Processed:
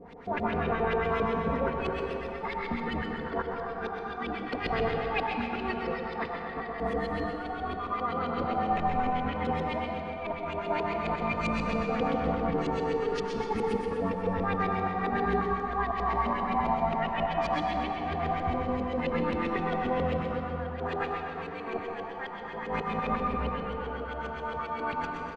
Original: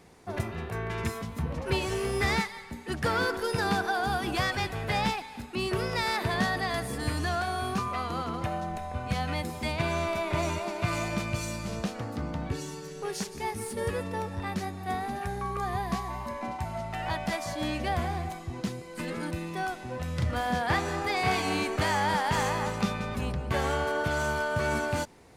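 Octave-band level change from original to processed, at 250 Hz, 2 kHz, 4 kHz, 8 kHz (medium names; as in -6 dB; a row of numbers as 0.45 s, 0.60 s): +1.0 dB, -3.5 dB, -7.5 dB, under -15 dB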